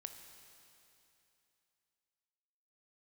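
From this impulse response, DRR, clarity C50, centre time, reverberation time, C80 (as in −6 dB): 6.0 dB, 7.0 dB, 45 ms, 2.9 s, 7.5 dB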